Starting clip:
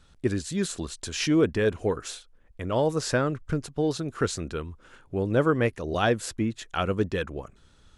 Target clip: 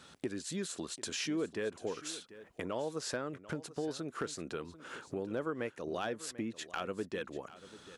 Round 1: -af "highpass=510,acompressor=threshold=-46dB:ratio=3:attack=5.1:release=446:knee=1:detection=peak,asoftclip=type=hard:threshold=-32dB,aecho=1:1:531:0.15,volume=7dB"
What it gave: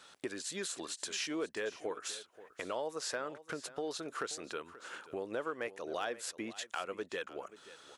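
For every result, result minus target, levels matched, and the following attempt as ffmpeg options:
echo 210 ms early; 250 Hz band −4.5 dB
-af "highpass=510,acompressor=threshold=-46dB:ratio=3:attack=5.1:release=446:knee=1:detection=peak,asoftclip=type=hard:threshold=-32dB,aecho=1:1:741:0.15,volume=7dB"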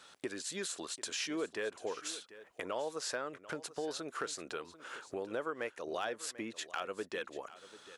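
250 Hz band −4.5 dB
-af "highpass=210,acompressor=threshold=-46dB:ratio=3:attack=5.1:release=446:knee=1:detection=peak,asoftclip=type=hard:threshold=-32dB,aecho=1:1:741:0.15,volume=7dB"

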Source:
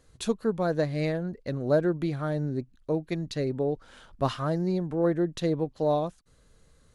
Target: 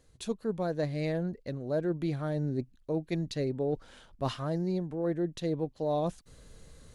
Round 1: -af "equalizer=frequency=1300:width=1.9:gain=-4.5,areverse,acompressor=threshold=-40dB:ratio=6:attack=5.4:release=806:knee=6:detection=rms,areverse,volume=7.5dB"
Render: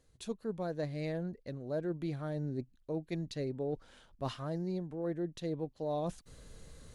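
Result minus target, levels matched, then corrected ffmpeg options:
downward compressor: peak gain reduction +5.5 dB
-af "equalizer=frequency=1300:width=1.9:gain=-4.5,areverse,acompressor=threshold=-33.5dB:ratio=6:attack=5.4:release=806:knee=6:detection=rms,areverse,volume=7.5dB"

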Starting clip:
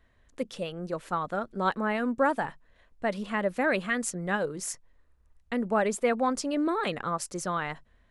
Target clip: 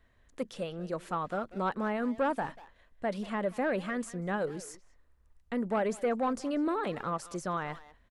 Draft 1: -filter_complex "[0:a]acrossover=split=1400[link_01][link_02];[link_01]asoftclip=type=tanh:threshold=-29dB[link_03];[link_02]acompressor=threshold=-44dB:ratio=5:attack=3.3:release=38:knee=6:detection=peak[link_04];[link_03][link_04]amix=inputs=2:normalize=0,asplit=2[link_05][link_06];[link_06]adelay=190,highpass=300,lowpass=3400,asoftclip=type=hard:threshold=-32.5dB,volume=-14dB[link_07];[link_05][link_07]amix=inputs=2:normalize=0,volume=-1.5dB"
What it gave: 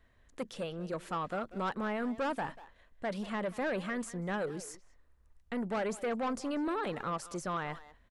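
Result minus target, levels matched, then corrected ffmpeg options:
soft clipping: distortion +8 dB
-filter_complex "[0:a]acrossover=split=1400[link_01][link_02];[link_01]asoftclip=type=tanh:threshold=-21dB[link_03];[link_02]acompressor=threshold=-44dB:ratio=5:attack=3.3:release=38:knee=6:detection=peak[link_04];[link_03][link_04]amix=inputs=2:normalize=0,asplit=2[link_05][link_06];[link_06]adelay=190,highpass=300,lowpass=3400,asoftclip=type=hard:threshold=-32.5dB,volume=-14dB[link_07];[link_05][link_07]amix=inputs=2:normalize=0,volume=-1.5dB"

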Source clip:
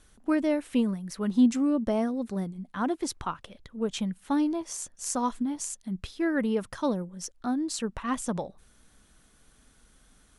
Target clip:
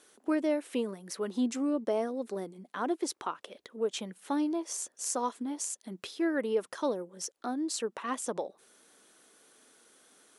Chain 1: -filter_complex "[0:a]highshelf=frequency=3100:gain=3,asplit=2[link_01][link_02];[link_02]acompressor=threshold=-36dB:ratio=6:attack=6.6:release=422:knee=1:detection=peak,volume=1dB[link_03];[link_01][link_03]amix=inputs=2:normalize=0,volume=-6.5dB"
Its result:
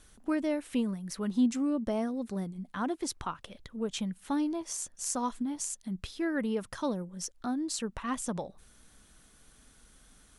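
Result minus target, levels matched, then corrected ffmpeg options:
500 Hz band −4.5 dB
-filter_complex "[0:a]highpass=frequency=390:width_type=q:width=1.9,highshelf=frequency=3100:gain=3,asplit=2[link_01][link_02];[link_02]acompressor=threshold=-36dB:ratio=6:attack=6.6:release=422:knee=1:detection=peak,volume=1dB[link_03];[link_01][link_03]amix=inputs=2:normalize=0,volume=-6.5dB"

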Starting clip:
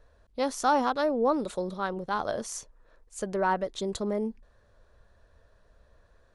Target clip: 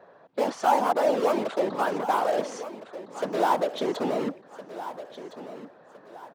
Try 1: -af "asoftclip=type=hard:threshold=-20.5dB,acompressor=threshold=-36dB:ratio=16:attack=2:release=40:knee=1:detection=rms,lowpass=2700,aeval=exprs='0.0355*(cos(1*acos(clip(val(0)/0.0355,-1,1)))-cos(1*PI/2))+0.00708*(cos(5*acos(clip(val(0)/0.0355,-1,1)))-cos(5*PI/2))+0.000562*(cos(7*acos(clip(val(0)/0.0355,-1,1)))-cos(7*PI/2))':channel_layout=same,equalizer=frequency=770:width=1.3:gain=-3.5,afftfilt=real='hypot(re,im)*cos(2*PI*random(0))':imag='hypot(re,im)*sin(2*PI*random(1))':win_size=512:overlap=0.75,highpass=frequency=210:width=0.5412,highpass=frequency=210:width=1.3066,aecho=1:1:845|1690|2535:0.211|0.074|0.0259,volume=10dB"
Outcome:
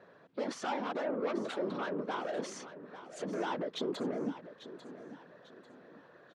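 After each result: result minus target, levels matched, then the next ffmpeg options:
downward compressor: peak gain reduction +8.5 dB; echo 517 ms early; 1,000 Hz band −4.0 dB
-af "asoftclip=type=hard:threshold=-20.5dB,acompressor=threshold=-27dB:ratio=16:attack=2:release=40:knee=1:detection=rms,lowpass=2700,aeval=exprs='0.0355*(cos(1*acos(clip(val(0)/0.0355,-1,1)))-cos(1*PI/2))+0.00708*(cos(5*acos(clip(val(0)/0.0355,-1,1)))-cos(5*PI/2))+0.000562*(cos(7*acos(clip(val(0)/0.0355,-1,1)))-cos(7*PI/2))':channel_layout=same,equalizer=frequency=770:width=1.3:gain=-3.5,afftfilt=real='hypot(re,im)*cos(2*PI*random(0))':imag='hypot(re,im)*sin(2*PI*random(1))':win_size=512:overlap=0.75,highpass=frequency=210:width=0.5412,highpass=frequency=210:width=1.3066,aecho=1:1:845|1690|2535:0.211|0.074|0.0259,volume=10dB"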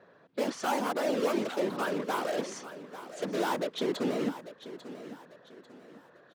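echo 517 ms early; 1,000 Hz band −4.0 dB
-af "asoftclip=type=hard:threshold=-20.5dB,acompressor=threshold=-27dB:ratio=16:attack=2:release=40:knee=1:detection=rms,lowpass=2700,aeval=exprs='0.0355*(cos(1*acos(clip(val(0)/0.0355,-1,1)))-cos(1*PI/2))+0.00708*(cos(5*acos(clip(val(0)/0.0355,-1,1)))-cos(5*PI/2))+0.000562*(cos(7*acos(clip(val(0)/0.0355,-1,1)))-cos(7*PI/2))':channel_layout=same,equalizer=frequency=770:width=1.3:gain=-3.5,afftfilt=real='hypot(re,im)*cos(2*PI*random(0))':imag='hypot(re,im)*sin(2*PI*random(1))':win_size=512:overlap=0.75,highpass=frequency=210:width=0.5412,highpass=frequency=210:width=1.3066,aecho=1:1:1362|2724|4086:0.211|0.074|0.0259,volume=10dB"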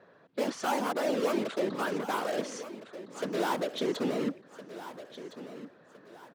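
1,000 Hz band −3.5 dB
-af "asoftclip=type=hard:threshold=-20.5dB,acompressor=threshold=-27dB:ratio=16:attack=2:release=40:knee=1:detection=rms,lowpass=2700,aeval=exprs='0.0355*(cos(1*acos(clip(val(0)/0.0355,-1,1)))-cos(1*PI/2))+0.00708*(cos(5*acos(clip(val(0)/0.0355,-1,1)))-cos(5*PI/2))+0.000562*(cos(7*acos(clip(val(0)/0.0355,-1,1)))-cos(7*PI/2))':channel_layout=same,equalizer=frequency=770:width=1.3:gain=8,afftfilt=real='hypot(re,im)*cos(2*PI*random(0))':imag='hypot(re,im)*sin(2*PI*random(1))':win_size=512:overlap=0.75,highpass=frequency=210:width=0.5412,highpass=frequency=210:width=1.3066,aecho=1:1:1362|2724|4086:0.211|0.074|0.0259,volume=10dB"

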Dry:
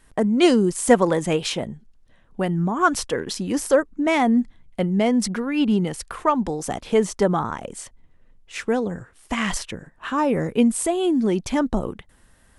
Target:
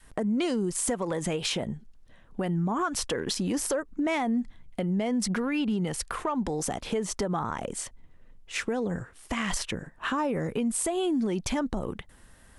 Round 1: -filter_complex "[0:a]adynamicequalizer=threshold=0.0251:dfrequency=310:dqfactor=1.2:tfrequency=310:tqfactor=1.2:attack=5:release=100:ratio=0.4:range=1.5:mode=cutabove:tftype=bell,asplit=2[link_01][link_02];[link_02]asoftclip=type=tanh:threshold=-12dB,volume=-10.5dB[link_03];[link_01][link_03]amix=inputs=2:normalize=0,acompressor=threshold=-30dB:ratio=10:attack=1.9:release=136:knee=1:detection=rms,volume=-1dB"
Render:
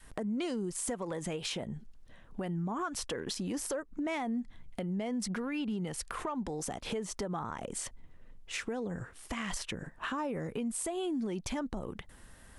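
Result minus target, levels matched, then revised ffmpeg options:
downward compressor: peak gain reduction +7 dB
-filter_complex "[0:a]adynamicequalizer=threshold=0.0251:dfrequency=310:dqfactor=1.2:tfrequency=310:tqfactor=1.2:attack=5:release=100:ratio=0.4:range=1.5:mode=cutabove:tftype=bell,asplit=2[link_01][link_02];[link_02]asoftclip=type=tanh:threshold=-12dB,volume=-10.5dB[link_03];[link_01][link_03]amix=inputs=2:normalize=0,acompressor=threshold=-22dB:ratio=10:attack=1.9:release=136:knee=1:detection=rms,volume=-1dB"

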